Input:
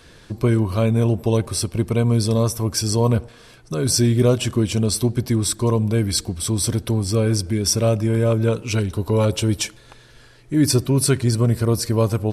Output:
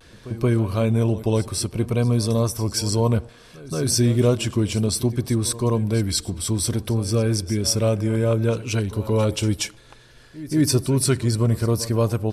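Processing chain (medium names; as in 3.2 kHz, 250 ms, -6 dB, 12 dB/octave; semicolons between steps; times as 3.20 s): reverse echo 180 ms -16.5 dB; vibrato 0.6 Hz 36 cents; trim -2 dB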